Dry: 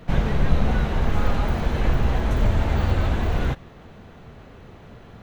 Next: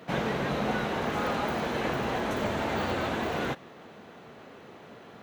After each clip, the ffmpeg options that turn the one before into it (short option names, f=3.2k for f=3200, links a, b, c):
-af "highpass=250"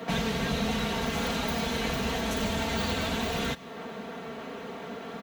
-filter_complex "[0:a]aecho=1:1:4.4:0.7,acrossover=split=140|3000[a][b][c];[b]acompressor=threshold=-40dB:ratio=4[d];[a][d][c]amix=inputs=3:normalize=0,volume=7.5dB"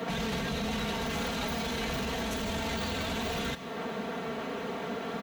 -af "alimiter=level_in=4dB:limit=-24dB:level=0:latency=1:release=20,volume=-4dB,volume=3.5dB"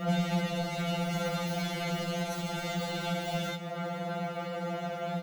-filter_complex "[0:a]acrossover=split=680[a][b];[a]acontrast=45[c];[c][b]amix=inputs=2:normalize=0,afftfilt=real='re*2.83*eq(mod(b,8),0)':imag='im*2.83*eq(mod(b,8),0)':win_size=2048:overlap=0.75"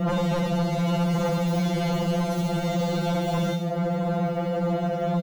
-filter_complex "[0:a]acrossover=split=650|2800[a][b][c];[a]aeval=exprs='0.0891*sin(PI/2*3.16*val(0)/0.0891)':c=same[d];[c]aecho=1:1:68|136|204|272|340|408|476|544:0.668|0.381|0.217|0.124|0.0706|0.0402|0.0229|0.0131[e];[d][b][e]amix=inputs=3:normalize=0"